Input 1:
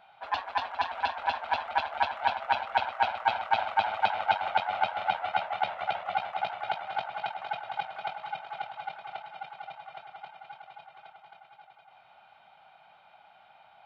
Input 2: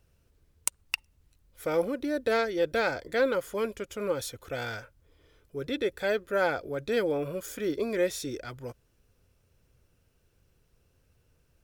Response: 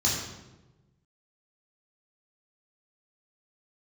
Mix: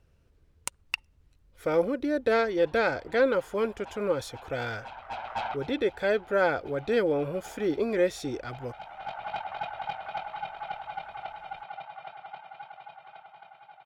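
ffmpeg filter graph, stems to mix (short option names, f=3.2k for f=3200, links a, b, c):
-filter_complex "[0:a]asoftclip=type=tanh:threshold=-27dB,adelay=2100,volume=2.5dB[a];[1:a]volume=2.5dB,asplit=2[b][c];[c]apad=whole_len=703573[d];[a][d]sidechaincompress=threshold=-44dB:ratio=6:attack=9.4:release=613[e];[e][b]amix=inputs=2:normalize=0,aemphasis=mode=reproduction:type=50kf"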